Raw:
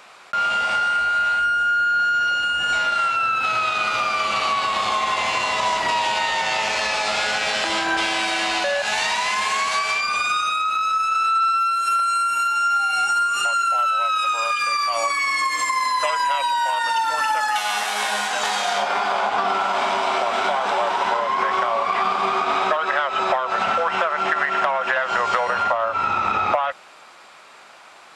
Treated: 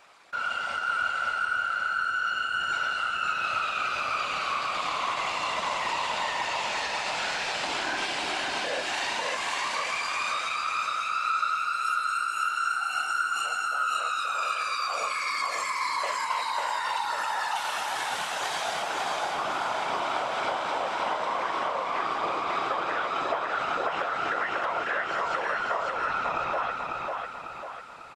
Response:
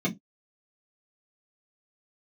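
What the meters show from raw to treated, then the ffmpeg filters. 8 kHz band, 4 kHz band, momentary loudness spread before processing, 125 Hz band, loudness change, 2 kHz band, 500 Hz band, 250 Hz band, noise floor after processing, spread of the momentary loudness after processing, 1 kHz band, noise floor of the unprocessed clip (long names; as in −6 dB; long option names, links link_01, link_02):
−8.0 dB, −7.5 dB, 2 LU, can't be measured, −8.0 dB, −7.0 dB, −8.0 dB, −7.5 dB, −34 dBFS, 2 LU, −8.0 dB, −46 dBFS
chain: -af "afftfilt=real='hypot(re,im)*cos(2*PI*random(0))':imag='hypot(re,im)*sin(2*PI*random(1))':win_size=512:overlap=0.75,aecho=1:1:547|1094|1641|2188|2735|3282:0.708|0.34|0.163|0.0783|0.0376|0.018,volume=-4dB"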